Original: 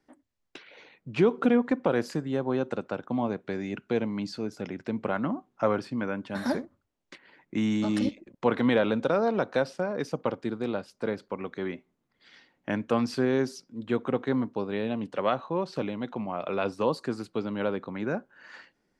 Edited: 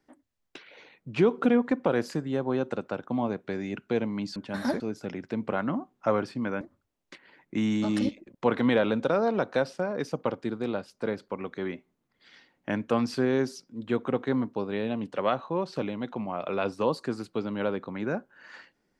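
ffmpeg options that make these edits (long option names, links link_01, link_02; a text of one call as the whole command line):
ffmpeg -i in.wav -filter_complex "[0:a]asplit=4[link_01][link_02][link_03][link_04];[link_01]atrim=end=4.362[link_05];[link_02]atrim=start=6.168:end=6.612[link_06];[link_03]atrim=start=4.358:end=6.172[link_07];[link_04]atrim=start=6.608[link_08];[link_05][link_06]acrossfade=duration=0.004:curve1=hsin:curve2=hsin[link_09];[link_09][link_07]acrossfade=duration=0.004:curve1=hsin:curve2=hsin[link_10];[link_10][link_08]acrossfade=duration=0.004:curve1=hsin:curve2=hsin" out.wav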